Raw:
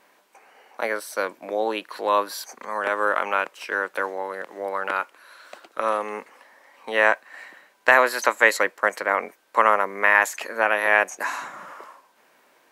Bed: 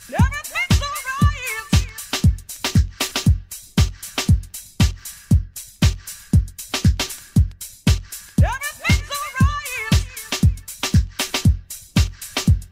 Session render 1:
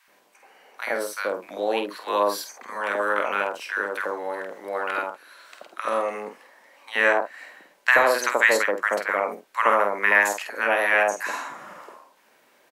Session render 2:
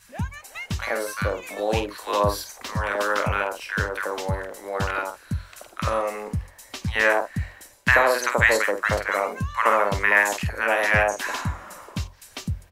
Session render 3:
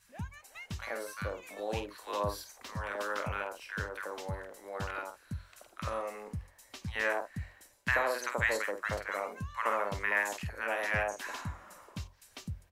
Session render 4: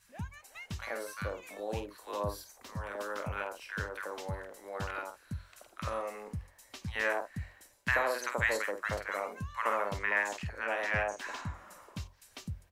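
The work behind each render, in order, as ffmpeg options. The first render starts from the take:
ffmpeg -i in.wav -filter_complex "[0:a]asplit=2[link_01][link_02];[link_02]adelay=49,volume=-7.5dB[link_03];[link_01][link_03]amix=inputs=2:normalize=0,acrossover=split=1100[link_04][link_05];[link_04]adelay=80[link_06];[link_06][link_05]amix=inputs=2:normalize=0" out.wav
ffmpeg -i in.wav -i bed.wav -filter_complex "[1:a]volume=-13dB[link_01];[0:a][link_01]amix=inputs=2:normalize=0" out.wav
ffmpeg -i in.wav -af "volume=-12dB" out.wav
ffmpeg -i in.wav -filter_complex "[0:a]asettb=1/sr,asplit=3[link_01][link_02][link_03];[link_01]atrim=end=1.574[link_04];[link_02]atrim=start=1.57:end=3.37,asetpts=PTS-STARTPTS,afade=type=in:duration=0.004:curve=qsin,afade=type=out:start_time=1.796:duration=0.004:curve=qsin,equalizer=frequency=2500:width_type=o:width=2.9:gain=-5.5[link_05];[link_03]atrim=start=3.366[link_06];[link_04][link_05]acrossfade=duration=0.004:curve1=hsin:curve2=qsin[link_07];[link_07][link_06]acrossfade=duration=0.004:curve1=qsin:curve2=hsin,asettb=1/sr,asplit=3[link_08][link_09][link_10];[link_08]atrim=end=9.984[link_11];[link_09]atrim=start=9.98:end=11.54,asetpts=PTS-STARTPTS,afade=type=in:duration=0.004:curve=qsin,afade=type=out:start_time=1.556:duration=0.004:curve=qsin,equalizer=frequency=12000:width_type=o:width=0.61:gain=-12[link_12];[link_10]atrim=start=11.536[link_13];[link_11][link_12]acrossfade=duration=0.004:curve1=hsin:curve2=qsin[link_14];[link_14][link_13]acrossfade=duration=0.004:curve1=qsin:curve2=hsin" out.wav

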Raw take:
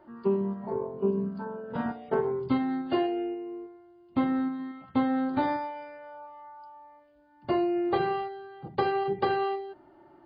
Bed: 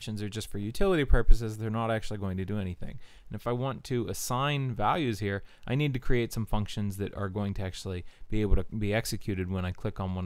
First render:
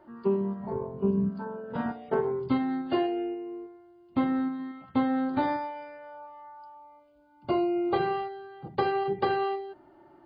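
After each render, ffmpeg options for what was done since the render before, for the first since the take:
ffmpeg -i in.wav -filter_complex "[0:a]asplit=3[link_01][link_02][link_03];[link_01]afade=type=out:start_time=0.59:duration=0.02[link_04];[link_02]asubboost=boost=8.5:cutoff=180,afade=type=in:start_time=0.59:duration=0.02,afade=type=out:start_time=1.29:duration=0.02[link_05];[link_03]afade=type=in:start_time=1.29:duration=0.02[link_06];[link_04][link_05][link_06]amix=inputs=3:normalize=0,asettb=1/sr,asplit=3[link_07][link_08][link_09];[link_07]atrim=end=6.744[link_10];[link_08]atrim=start=6.74:end=8.17,asetpts=PTS-STARTPTS,afade=type=in:duration=0.004:curve=qsin,afade=type=out:start_time=1.426:duration=0.004:curve=qsin,asuperstop=centerf=1800:order=8:qfactor=7.5[link_11];[link_09]atrim=start=8.166[link_12];[link_10][link_11]acrossfade=duration=0.004:curve1=hsin:curve2=qsin[link_13];[link_13][link_12]acrossfade=duration=0.004:curve1=qsin:curve2=hsin" out.wav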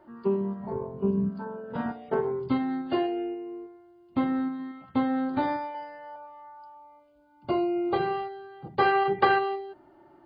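ffmpeg -i in.wav -filter_complex "[0:a]asettb=1/sr,asplit=3[link_01][link_02][link_03];[link_01]atrim=end=5.744[link_04];[link_02]atrim=start=5.74:end=6.16,asetpts=PTS-STARTPTS,afade=type=in:duration=0.004:curve=qsin,afade=type=out:start_time=0.416:duration=0.004:curve=qsin,aecho=1:1:5.7:0.89,atrim=end_sample=18522[link_05];[link_03]atrim=start=6.156[link_06];[link_04][link_05]acrossfade=duration=0.004:curve1=hsin:curve2=qsin[link_07];[link_07][link_06]acrossfade=duration=0.004:curve1=qsin:curve2=hsin,asplit=3[link_08][link_09][link_10];[link_08]afade=type=out:start_time=8.79:duration=0.02[link_11];[link_09]equalizer=frequency=1600:width=0.54:gain=10.5,afade=type=in:start_time=8.79:duration=0.02,afade=type=out:start_time=9.38:duration=0.02[link_12];[link_10]afade=type=in:start_time=9.38:duration=0.02[link_13];[link_11][link_12][link_13]amix=inputs=3:normalize=0" out.wav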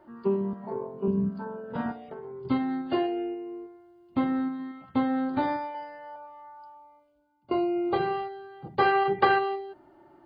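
ffmpeg -i in.wav -filter_complex "[0:a]asettb=1/sr,asplit=3[link_01][link_02][link_03];[link_01]atrim=end=0.534[link_04];[link_02]atrim=start=0.53:end=1.08,asetpts=PTS-STARTPTS,afade=type=in:duration=0.004:curve=qsin,afade=type=out:start_time=0.546:duration=0.004:curve=qsin,highpass=220[link_05];[link_03]atrim=start=1.076[link_06];[link_04][link_05]acrossfade=duration=0.004:curve1=hsin:curve2=qsin[link_07];[link_07][link_06]acrossfade=duration=0.004:curve1=qsin:curve2=hsin,asettb=1/sr,asplit=3[link_08][link_09][link_10];[link_08]atrim=end=2.014[link_11];[link_09]atrim=start=2.01:end=2.45,asetpts=PTS-STARTPTS,afade=type=in:duration=0.004:curve=qsin,afade=type=out:start_time=0.436:duration=0.004:curve=qsin,acompressor=threshold=-38dB:ratio=6:attack=3.2:release=140:knee=1:detection=peak[link_12];[link_10]atrim=start=2.446[link_13];[link_11][link_12]acrossfade=duration=0.004:curve1=hsin:curve2=qsin[link_14];[link_14][link_13]acrossfade=duration=0.004:curve1=qsin:curve2=hsin,asplit=2[link_15][link_16];[link_15]atrim=end=7.51,asetpts=PTS-STARTPTS,afade=type=out:start_time=6.68:duration=0.83:silence=0.0944061[link_17];[link_16]atrim=start=7.51,asetpts=PTS-STARTPTS,afade=type=in:duration=0.004:curve=hsin:silence=0.0944061[link_18];[link_17][link_18]concat=n=2:v=0:a=1" out.wav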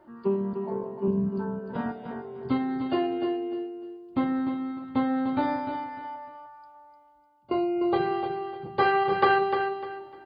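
ffmpeg -i in.wav -af "aecho=1:1:301|602|903:0.422|0.118|0.0331" out.wav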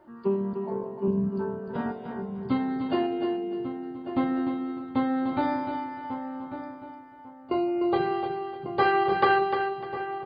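ffmpeg -i in.wav -filter_complex "[0:a]asplit=2[link_01][link_02];[link_02]adelay=1146,lowpass=frequency=1800:poles=1,volume=-9.5dB,asplit=2[link_03][link_04];[link_04]adelay=1146,lowpass=frequency=1800:poles=1,volume=0.22,asplit=2[link_05][link_06];[link_06]adelay=1146,lowpass=frequency=1800:poles=1,volume=0.22[link_07];[link_01][link_03][link_05][link_07]amix=inputs=4:normalize=0" out.wav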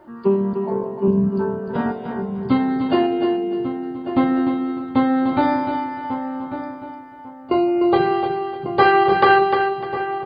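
ffmpeg -i in.wav -af "volume=8.5dB,alimiter=limit=-1dB:level=0:latency=1" out.wav

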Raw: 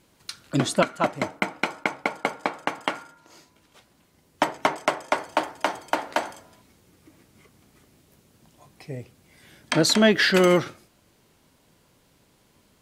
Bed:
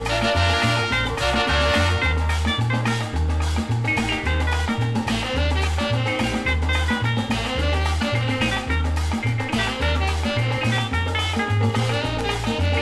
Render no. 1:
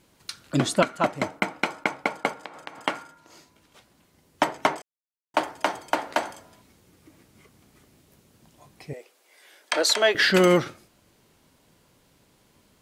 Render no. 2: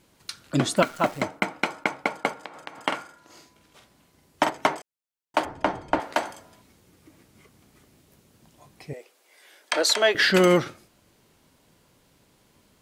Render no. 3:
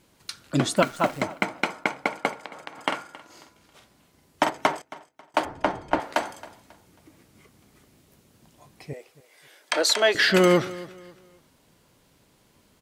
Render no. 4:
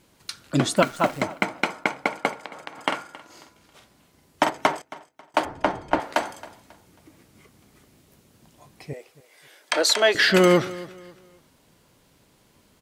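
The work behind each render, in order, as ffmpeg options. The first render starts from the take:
ffmpeg -i in.wav -filter_complex "[0:a]asplit=3[link_01][link_02][link_03];[link_01]afade=type=out:start_time=2.33:duration=0.02[link_04];[link_02]acompressor=threshold=-35dB:ratio=8:attack=3.2:release=140:knee=1:detection=peak,afade=type=in:start_time=2.33:duration=0.02,afade=type=out:start_time=2.79:duration=0.02[link_05];[link_03]afade=type=in:start_time=2.79:duration=0.02[link_06];[link_04][link_05][link_06]amix=inputs=3:normalize=0,asettb=1/sr,asplit=3[link_07][link_08][link_09];[link_07]atrim=end=8.934[link_10];[link_08]atrim=start=8.93:end=10.15,asetpts=PTS-STARTPTS,afade=type=in:duration=0.004:curve=qsin,afade=type=out:start_time=1.216:duration=0.004:curve=qsin,highpass=frequency=430:width=0.5412,highpass=frequency=430:width=1.3066[link_11];[link_09]atrim=start=10.146[link_12];[link_10][link_11]acrossfade=duration=0.004:curve1=hsin:curve2=qsin[link_13];[link_13][link_12]acrossfade=duration=0.004:curve1=qsin:curve2=hsin,asplit=3[link_14][link_15][link_16];[link_14]atrim=end=4.82,asetpts=PTS-STARTPTS,afade=type=out:start_time=4.816:duration=0.004:curve=hsin[link_17];[link_15]atrim=start=4.82:end=5.34,asetpts=PTS-STARTPTS,volume=0[link_18];[link_16]atrim=start=5.34,asetpts=PTS-STARTPTS,afade=type=in:duration=0.004:curve=hsin[link_19];[link_17][link_18][link_19]concat=n=3:v=0:a=1" out.wav
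ffmpeg -i in.wav -filter_complex "[0:a]asplit=3[link_01][link_02][link_03];[link_01]afade=type=out:start_time=0.76:duration=0.02[link_04];[link_02]acrusher=bits=8:dc=4:mix=0:aa=0.000001,afade=type=in:start_time=0.76:duration=0.02,afade=type=out:start_time=1.21:duration=0.02[link_05];[link_03]afade=type=in:start_time=1.21:duration=0.02[link_06];[link_04][link_05][link_06]amix=inputs=3:normalize=0,asettb=1/sr,asplit=3[link_07][link_08][link_09];[link_07]atrim=end=2.874[link_10];[link_08]atrim=start=2.87:end=4.5,asetpts=PTS-STARTPTS,afade=type=in:duration=0.004:curve=qsin,afade=type=out:start_time=1.626:duration=0.004:curve=qsin,asplit=2[link_11][link_12];[link_12]adelay=47,volume=-6dB[link_13];[link_11][link_13]amix=inputs=2:normalize=0,atrim=end_sample=71883[link_14];[link_09]atrim=start=4.496[link_15];[link_10][link_14]acrossfade=duration=0.004:curve1=hsin:curve2=qsin[link_16];[link_16][link_15]acrossfade=duration=0.004:curve1=qsin:curve2=hsin,asettb=1/sr,asplit=3[link_17][link_18][link_19];[link_17]atrim=end=5.454[link_20];[link_18]atrim=start=5.45:end=6,asetpts=PTS-STARTPTS,afade=type=in:duration=0.004:curve=qsin,afade=type=out:start_time=0.546:duration=0.004:curve=qsin,aemphasis=mode=reproduction:type=riaa[link_21];[link_19]atrim=start=5.996[link_22];[link_20][link_21]acrossfade=duration=0.004:curve1=hsin:curve2=qsin[link_23];[link_23][link_22]acrossfade=duration=0.004:curve1=qsin:curve2=hsin" out.wav
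ffmpeg -i in.wav -af "aecho=1:1:271|542|813:0.112|0.0359|0.0115" out.wav
ffmpeg -i in.wav -af "volume=1.5dB" out.wav

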